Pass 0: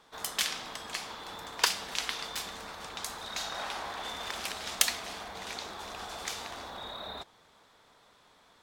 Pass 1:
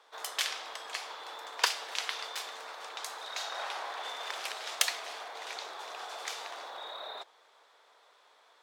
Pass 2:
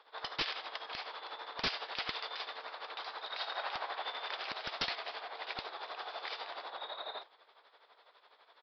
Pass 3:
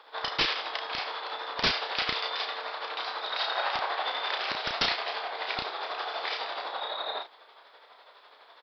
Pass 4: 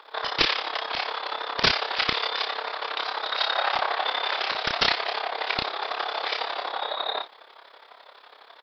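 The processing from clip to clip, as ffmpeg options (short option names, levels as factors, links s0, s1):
-af "highpass=f=430:w=0.5412,highpass=f=430:w=1.3066,highshelf=f=7000:g=-7"
-af "tremolo=f=12:d=0.67,aresample=11025,aeval=exprs='(mod(22.4*val(0)+1,2)-1)/22.4':c=same,aresample=44100,volume=1.26"
-filter_complex "[0:a]asplit=2[s0][s1];[s1]adelay=33,volume=0.562[s2];[s0][s2]amix=inputs=2:normalize=0,volume=2.51"
-af "tremolo=f=34:d=0.75,volume=2.51"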